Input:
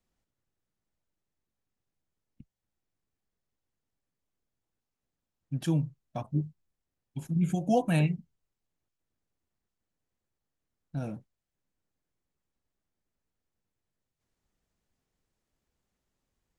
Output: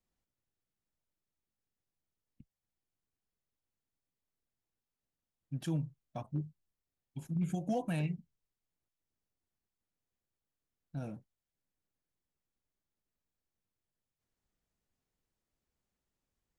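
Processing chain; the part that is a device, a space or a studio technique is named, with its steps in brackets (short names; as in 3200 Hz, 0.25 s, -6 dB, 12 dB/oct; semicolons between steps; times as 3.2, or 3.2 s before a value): limiter into clipper (limiter -20 dBFS, peak gain reduction 5 dB; hard clip -21 dBFS, distortion -34 dB); gain -6 dB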